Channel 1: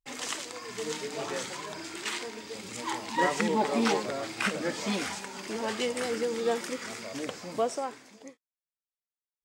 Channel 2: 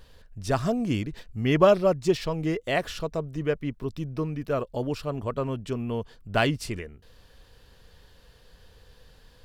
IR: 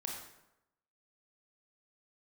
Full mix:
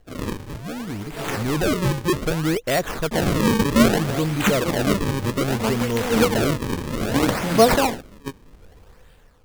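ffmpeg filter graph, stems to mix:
-filter_complex "[0:a]bandreject=f=60:t=h:w=6,bandreject=f=120:t=h:w=6,bandreject=f=180:t=h:w=6,bandreject=f=240:t=h:w=6,bandreject=f=300:t=h:w=6,bandreject=f=360:t=h:w=6,bandreject=f=420:t=h:w=6,bandreject=f=480:t=h:w=6,bandreject=f=540:t=h:w=6,agate=range=-13dB:threshold=-45dB:ratio=16:detection=peak,bass=f=250:g=13,treble=f=4k:g=11,volume=1.5dB,asplit=3[a][b][c];[a]atrim=end=2.02,asetpts=PTS-STARTPTS,afade=t=out:st=2.016:d=0.004:c=hsin[d];[b]atrim=start=2.02:end=3.11,asetpts=PTS-STARTPTS,volume=0[e];[c]atrim=start=3.11,asetpts=PTS-STARTPTS,afade=t=in:d=0.004:c=hsin[f];[d][e][f]concat=n=3:v=0:a=1[g];[1:a]asoftclip=type=tanh:threshold=-24dB,volume=-4.5dB,asplit=2[h][i];[i]apad=whole_len=416569[j];[g][j]sidechaincompress=threshold=-49dB:ratio=8:attack=33:release=193[k];[k][h]amix=inputs=2:normalize=0,dynaudnorm=f=490:g=5:m=13.5dB,acrusher=samples=36:mix=1:aa=0.000001:lfo=1:lforange=57.6:lforate=0.63"

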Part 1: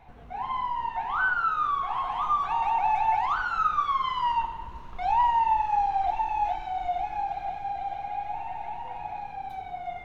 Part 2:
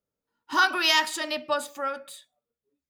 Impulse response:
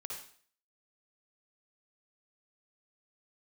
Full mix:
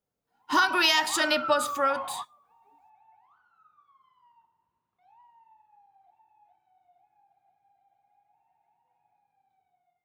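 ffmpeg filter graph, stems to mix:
-filter_complex "[0:a]highpass=f=94:w=0.5412,highpass=f=94:w=1.3066,adynamicequalizer=threshold=0.0126:dfrequency=1600:dqfactor=0.7:tfrequency=1600:tqfactor=0.7:attack=5:release=100:ratio=0.375:range=2.5:mode=cutabove:tftype=highshelf,volume=-12dB[a];[1:a]acompressor=threshold=-24dB:ratio=6,volume=-0.5dB,asplit=2[b][c];[c]apad=whole_len=442893[d];[a][d]sidechaingate=range=-30dB:threshold=-48dB:ratio=16:detection=peak[e];[e][b]amix=inputs=2:normalize=0,dynaudnorm=f=110:g=7:m=6dB"

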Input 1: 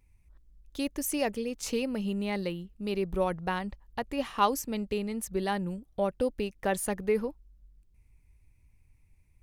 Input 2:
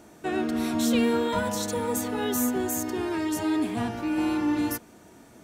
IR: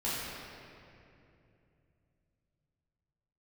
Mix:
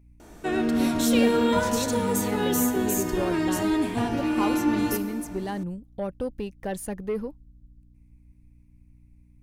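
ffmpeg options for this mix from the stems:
-filter_complex "[0:a]lowshelf=f=390:g=7,asoftclip=type=tanh:threshold=-17dB,volume=-3.5dB[a];[1:a]adelay=200,volume=1dB,asplit=2[b][c];[c]volume=-14dB[d];[2:a]atrim=start_sample=2205[e];[d][e]afir=irnorm=-1:irlink=0[f];[a][b][f]amix=inputs=3:normalize=0,aeval=exprs='val(0)+0.002*(sin(2*PI*60*n/s)+sin(2*PI*2*60*n/s)/2+sin(2*PI*3*60*n/s)/3+sin(2*PI*4*60*n/s)/4+sin(2*PI*5*60*n/s)/5)':c=same"

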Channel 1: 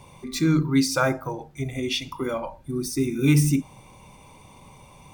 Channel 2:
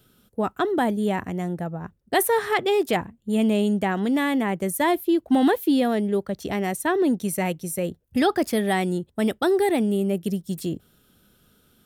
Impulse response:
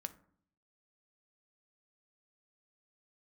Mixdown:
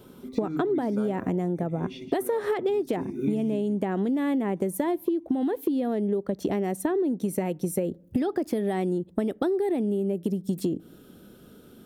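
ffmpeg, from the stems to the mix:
-filter_complex "[0:a]acrossover=split=4400[a][b];[b]acompressor=threshold=-41dB:ratio=4:attack=1:release=60[c];[a][c]amix=inputs=2:normalize=0,volume=-19.5dB,asplit=3[d][e][f];[e]volume=-6dB[g];[f]volume=-8.5dB[h];[1:a]acompressor=threshold=-25dB:ratio=6,volume=0.5dB,asplit=2[i][j];[j]volume=-14dB[k];[2:a]atrim=start_sample=2205[l];[g][k]amix=inputs=2:normalize=0[m];[m][l]afir=irnorm=-1:irlink=0[n];[h]aecho=0:1:171:1[o];[d][i][n][o]amix=inputs=4:normalize=0,equalizer=f=340:t=o:w=2.5:g=13.5,acompressor=threshold=-23dB:ratio=10"

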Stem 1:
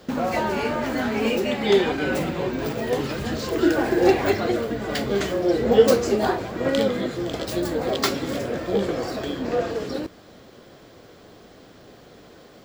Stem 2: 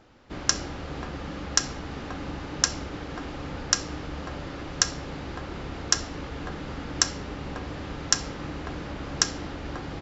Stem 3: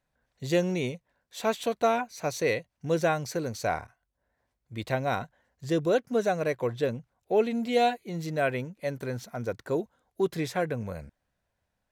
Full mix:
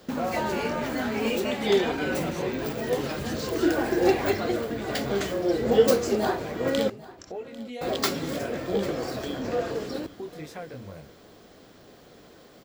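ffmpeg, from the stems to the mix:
-filter_complex "[0:a]bandreject=f=60:t=h:w=6,bandreject=f=120:t=h:w=6,crystalizer=i=0.5:c=0,volume=-4dB,asplit=3[a][b][c];[a]atrim=end=6.9,asetpts=PTS-STARTPTS,afade=t=out:st=6.896:d=0.004:c=hsin[d];[b]atrim=start=6.9:end=7.81,asetpts=PTS-STARTPTS,volume=0[e];[c]atrim=start=7.81,asetpts=PTS-STARTPTS,afade=t=in:d=0.004:c=hsin[f];[d][e][f]concat=n=3:v=0:a=1,asplit=2[g][h];[h]volume=-19.5dB[i];[1:a]aeval=exprs='val(0)*pow(10,-26*(0.5-0.5*cos(2*PI*12*n/s))/20)':c=same,adelay=200,volume=-4.5dB[j];[2:a]volume=0.5dB,asplit=2[k][l];[l]apad=whole_len=450294[m];[j][m]sidechaincompress=threshold=-32dB:ratio=8:attack=16:release=1450[n];[n][k]amix=inputs=2:normalize=0,flanger=delay=19:depth=4.9:speed=2,acompressor=threshold=-38dB:ratio=3,volume=0dB[o];[i]aecho=0:1:796:1[p];[g][o][p]amix=inputs=3:normalize=0"

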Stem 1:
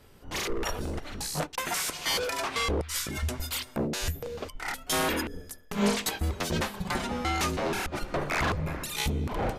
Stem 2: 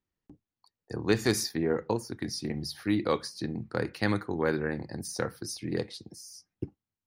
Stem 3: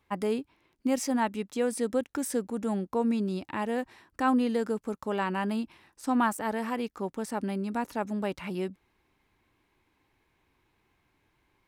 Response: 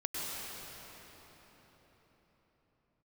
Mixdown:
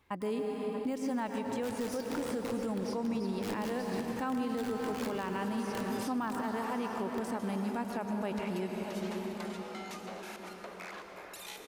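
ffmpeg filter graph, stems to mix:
-filter_complex "[0:a]highpass=f=360:w=0.5412,highpass=f=360:w=1.3066,acompressor=threshold=-32dB:ratio=6,adelay=2500,volume=-13.5dB,asplit=2[a][b];[b]volume=-5.5dB[c];[1:a]aeval=exprs='(mod(11.9*val(0)+1,2)-1)/11.9':c=same,adelay=550,volume=-11.5dB,asplit=2[d][e];[e]volume=-6.5dB[f];[2:a]deesser=0.95,volume=-0.5dB,asplit=4[g][h][i][j];[h]volume=-5.5dB[k];[i]volume=-14dB[l];[j]apad=whole_len=532994[m];[a][m]sidechaincompress=threshold=-42dB:ratio=8:attack=16:release=390[n];[3:a]atrim=start_sample=2205[o];[c][f][k]amix=inputs=3:normalize=0[p];[p][o]afir=irnorm=-1:irlink=0[q];[l]aecho=0:1:632:1[r];[n][d][g][q][r]amix=inputs=5:normalize=0,alimiter=level_in=2dB:limit=-24dB:level=0:latency=1:release=246,volume=-2dB"

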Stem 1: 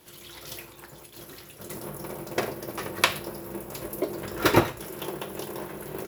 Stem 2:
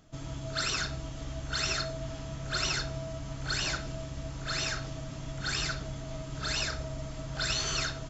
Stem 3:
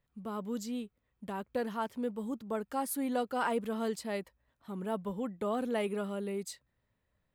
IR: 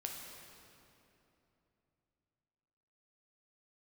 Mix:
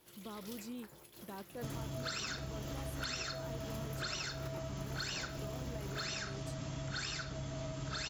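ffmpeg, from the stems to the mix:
-filter_complex "[0:a]acompressor=threshold=-34dB:ratio=3,volume=-10.5dB[a];[1:a]highpass=60,adelay=1500,volume=2.5dB[b];[2:a]alimiter=level_in=8dB:limit=-24dB:level=0:latency=1,volume=-8dB,volume=-6.5dB[c];[a][b][c]amix=inputs=3:normalize=0,acompressor=threshold=-38dB:ratio=6"

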